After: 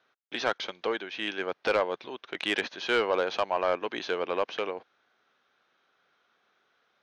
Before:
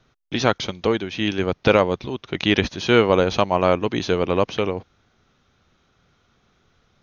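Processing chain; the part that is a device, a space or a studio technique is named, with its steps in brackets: intercom (BPF 490–4200 Hz; bell 1600 Hz +5.5 dB 0.21 oct; soft clip -10.5 dBFS, distortion -14 dB); gain -5 dB

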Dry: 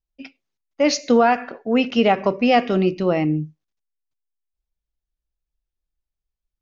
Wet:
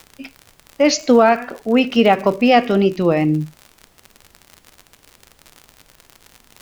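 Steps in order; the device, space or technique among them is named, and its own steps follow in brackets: warped LP (record warp 33 1/3 rpm, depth 100 cents; crackle 68/s -29 dBFS; pink noise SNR 36 dB); gain +3.5 dB

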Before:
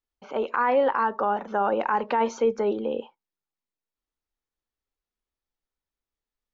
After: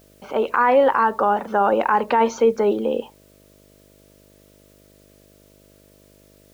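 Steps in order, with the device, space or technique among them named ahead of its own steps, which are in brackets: video cassette with head-switching buzz (buzz 50 Hz, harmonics 13, -60 dBFS -1 dB/oct; white noise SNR 37 dB); gain +6 dB

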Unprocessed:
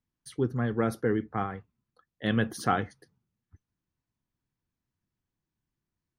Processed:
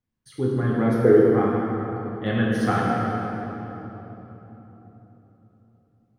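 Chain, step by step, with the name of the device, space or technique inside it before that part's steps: swimming-pool hall (reverb RT60 3.8 s, pre-delay 3 ms, DRR -5.5 dB; high shelf 3700 Hz -7.5 dB); 1.04–1.46 bell 410 Hz +8 dB 0.77 oct

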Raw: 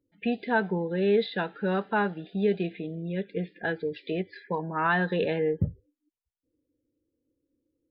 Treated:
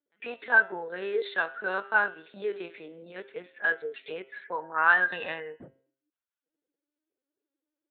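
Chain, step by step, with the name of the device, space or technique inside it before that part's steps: talking toy (LPC vocoder at 8 kHz pitch kept; HPF 530 Hz 12 dB/oct; bell 1500 Hz +9 dB 0.41 oct); de-hum 133.6 Hz, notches 25; 5.12–5.62 comb 1.1 ms, depth 70%

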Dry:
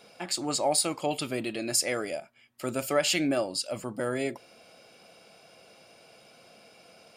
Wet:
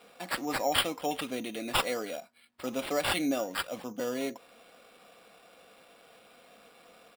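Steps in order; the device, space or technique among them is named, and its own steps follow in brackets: HPF 190 Hz 6 dB/oct; dynamic EQ 1600 Hz, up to -6 dB, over -51 dBFS, Q 2.2; comb 4.1 ms, depth 50%; crushed at another speed (playback speed 0.5×; sample-and-hold 14×; playback speed 2×); gain -2.5 dB

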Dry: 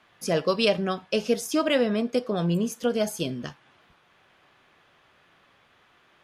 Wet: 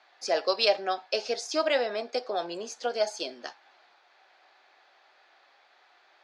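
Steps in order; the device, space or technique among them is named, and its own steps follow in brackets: phone speaker on a table (speaker cabinet 410–6600 Hz, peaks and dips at 470 Hz -6 dB, 780 Hz +7 dB, 1100 Hz -5 dB, 3000 Hz -6 dB, 4400 Hz +8 dB)

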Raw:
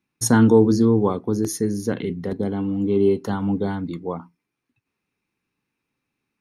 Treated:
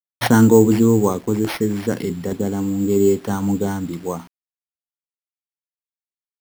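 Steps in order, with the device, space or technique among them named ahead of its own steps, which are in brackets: early 8-bit sampler (sample-rate reducer 7400 Hz, jitter 0%; bit-crush 8-bit); gain +2.5 dB

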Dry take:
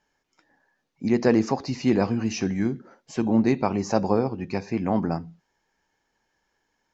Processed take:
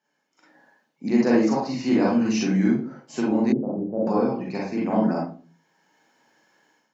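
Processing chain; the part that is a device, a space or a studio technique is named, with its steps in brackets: far laptop microphone (reverb RT60 0.35 s, pre-delay 36 ms, DRR -4.5 dB; HPF 160 Hz 24 dB/oct; AGC gain up to 13 dB); 3.52–4.07 Chebyshev low-pass 520 Hz, order 3; gain -7 dB

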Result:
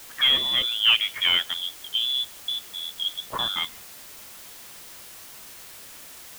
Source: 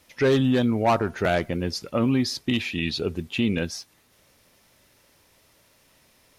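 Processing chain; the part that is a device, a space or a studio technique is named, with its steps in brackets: 1.57–3.3 elliptic band-pass 100–800 Hz; scrambled radio voice (BPF 370–3200 Hz; inverted band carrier 3700 Hz; white noise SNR 16 dB); gain +2.5 dB

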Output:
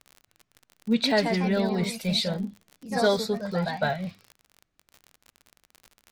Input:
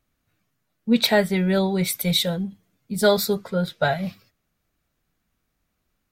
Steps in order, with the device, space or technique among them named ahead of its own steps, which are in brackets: echoes that change speed 0.258 s, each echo +2 st, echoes 2, each echo -6 dB; lo-fi chain (LPF 6900 Hz 12 dB/oct; wow and flutter; crackle 46/s -30 dBFS); gain -5 dB

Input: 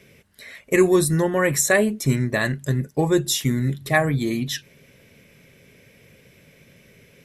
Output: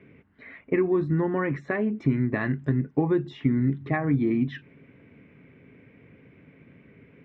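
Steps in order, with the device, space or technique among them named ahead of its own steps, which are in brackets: bass amplifier (compressor 5:1, threshold -21 dBFS, peak gain reduction 9.5 dB; speaker cabinet 63–2100 Hz, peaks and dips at 280 Hz +9 dB, 570 Hz -8 dB, 1700 Hz -4 dB); 1.94–3.29 high shelf 5600 Hz +12 dB

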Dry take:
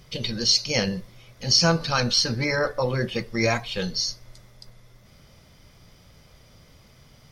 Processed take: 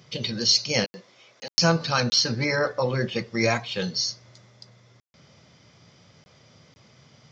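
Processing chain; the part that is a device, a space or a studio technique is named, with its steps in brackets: call with lost packets (HPF 100 Hz 24 dB/oct; downsampling 16000 Hz; packet loss bursts); 0.84–1.56 HPF 380 Hz 12 dB/oct

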